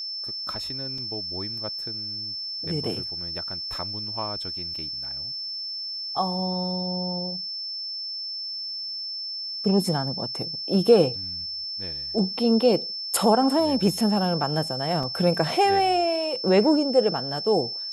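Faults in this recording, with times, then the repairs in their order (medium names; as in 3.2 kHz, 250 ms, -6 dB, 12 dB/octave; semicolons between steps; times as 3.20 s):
whine 5.3 kHz -30 dBFS
0.98 s: dropout 3.5 ms
15.03 s: dropout 4.1 ms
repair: band-stop 5.3 kHz, Q 30; interpolate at 0.98 s, 3.5 ms; interpolate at 15.03 s, 4.1 ms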